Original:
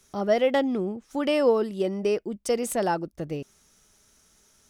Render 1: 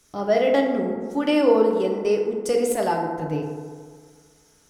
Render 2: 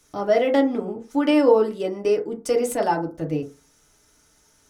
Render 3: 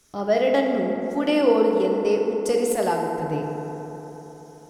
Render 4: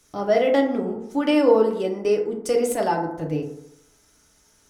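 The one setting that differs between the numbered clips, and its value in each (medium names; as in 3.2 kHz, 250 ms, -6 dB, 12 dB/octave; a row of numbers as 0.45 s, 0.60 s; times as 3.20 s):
FDN reverb, RT60: 1.8 s, 0.33 s, 4 s, 0.81 s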